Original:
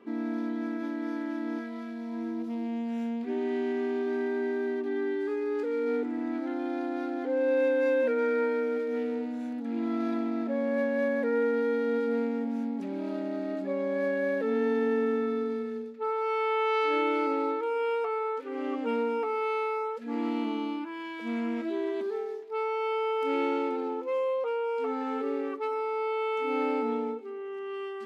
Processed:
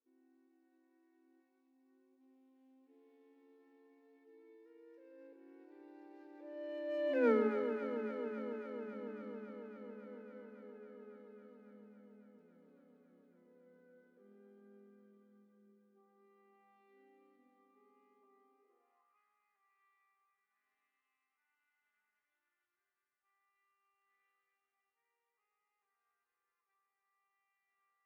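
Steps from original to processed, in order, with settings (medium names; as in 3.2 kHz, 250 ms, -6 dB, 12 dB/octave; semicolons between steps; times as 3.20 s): Doppler pass-by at 7.27 s, 40 m/s, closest 3.1 m; echo whose repeats swap between lows and highs 138 ms, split 1.1 kHz, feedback 90%, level -7.5 dB; high-pass sweep 190 Hz -> 1.5 kHz, 18.37–19.22 s; trim -3.5 dB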